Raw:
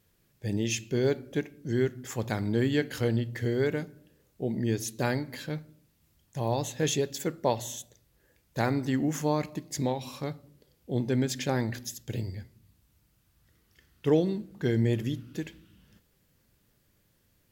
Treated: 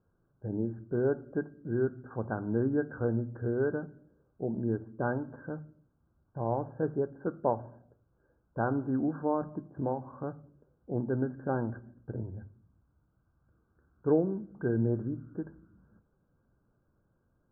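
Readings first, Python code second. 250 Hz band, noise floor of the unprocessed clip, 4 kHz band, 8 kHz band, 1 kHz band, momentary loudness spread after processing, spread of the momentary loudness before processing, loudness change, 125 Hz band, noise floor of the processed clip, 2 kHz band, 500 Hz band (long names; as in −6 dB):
−2.5 dB, −69 dBFS, below −40 dB, below −40 dB, −1.5 dB, 13 LU, 12 LU, −3.0 dB, −4.5 dB, −74 dBFS, −6.0 dB, −2.0 dB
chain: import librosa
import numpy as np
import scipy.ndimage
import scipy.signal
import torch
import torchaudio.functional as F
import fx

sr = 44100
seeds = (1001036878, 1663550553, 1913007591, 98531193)

y = scipy.signal.sosfilt(scipy.signal.cheby1(10, 1.0, 1600.0, 'lowpass', fs=sr, output='sos'), x)
y = fx.dynamic_eq(y, sr, hz=140.0, q=1.4, threshold_db=-37.0, ratio=4.0, max_db=-3)
y = fx.hum_notches(y, sr, base_hz=50, count=5)
y = y * librosa.db_to_amplitude(-1.0)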